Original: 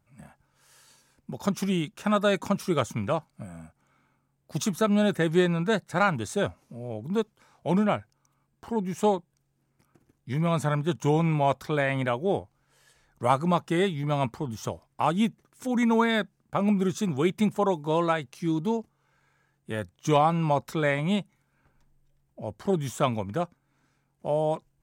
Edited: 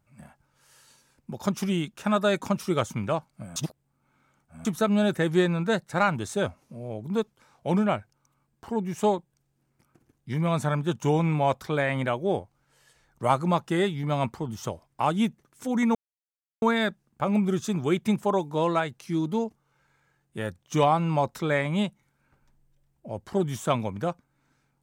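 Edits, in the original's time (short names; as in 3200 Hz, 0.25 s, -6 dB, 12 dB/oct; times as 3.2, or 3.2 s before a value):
3.56–4.65 reverse
15.95 insert silence 0.67 s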